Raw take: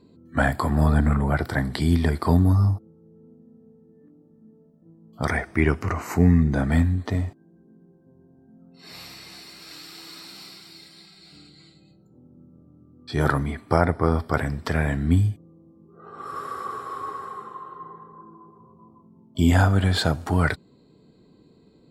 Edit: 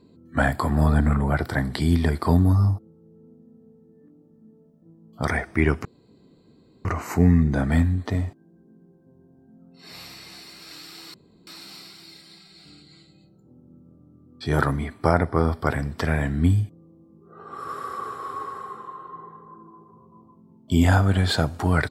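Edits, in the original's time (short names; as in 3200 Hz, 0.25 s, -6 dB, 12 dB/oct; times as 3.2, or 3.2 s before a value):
5.85 insert room tone 1.00 s
10.14 insert room tone 0.33 s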